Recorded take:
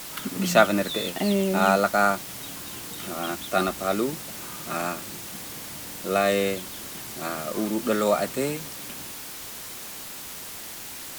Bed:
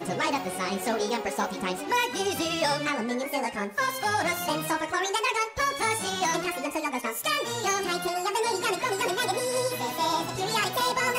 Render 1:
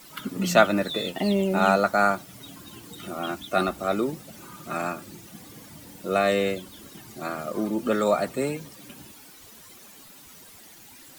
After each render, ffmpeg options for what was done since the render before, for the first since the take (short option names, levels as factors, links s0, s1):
-af "afftdn=nr=13:nf=-38"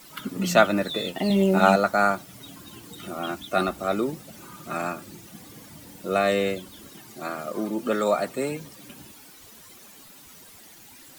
-filter_complex "[0:a]asettb=1/sr,asplit=3[s0][s1][s2];[s0]atrim=end=1.284[s3];[s1]atrim=start=1.28:end=1.76,asetpts=PTS-STARTPTS,afade=t=in:d=0.004:c=qsin,afade=t=out:st=0.476:d=0.004:c=qsin,asplit=2[s4][s5];[s5]adelay=21,volume=0.75[s6];[s4][s6]amix=inputs=2:normalize=0,atrim=end_sample=21168[s7];[s2]atrim=start=1.756[s8];[s3][s7]acrossfade=d=0.004:c1=hsin:c2=qsin[s9];[s9][s8]acrossfade=d=0.004:c1=qsin:c2=hsin,asettb=1/sr,asplit=3[s10][s11][s12];[s10]atrim=end=6.944[s13];[s11]atrim=start=6.94:end=8.52,asetpts=PTS-STARTPTS,afade=t=in:d=0.004:c=qsin,afade=t=out:st=1.576:d=0.004:c=qsin,lowshelf=f=100:g=-12[s14];[s12]atrim=start=8.516[s15];[s13][s14]acrossfade=d=0.004:c1=hsin:c2=qsin[s16];[s16][s15]acrossfade=d=0.004:c1=qsin:c2=hsin"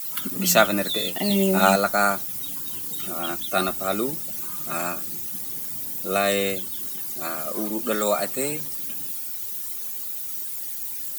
-af "aemphasis=mode=production:type=75fm"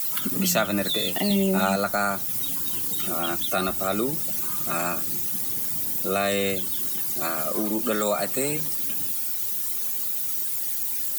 -filter_complex "[0:a]acrossover=split=150[s0][s1];[s1]acompressor=threshold=0.0355:ratio=2[s2];[s0][s2]amix=inputs=2:normalize=0,asplit=2[s3][s4];[s4]alimiter=limit=0.0841:level=0:latency=1,volume=0.891[s5];[s3][s5]amix=inputs=2:normalize=0"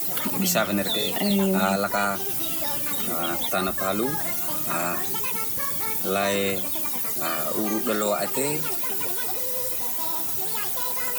-filter_complex "[1:a]volume=0.376[s0];[0:a][s0]amix=inputs=2:normalize=0"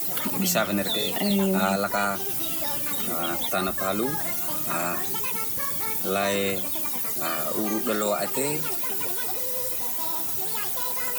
-af "volume=0.891"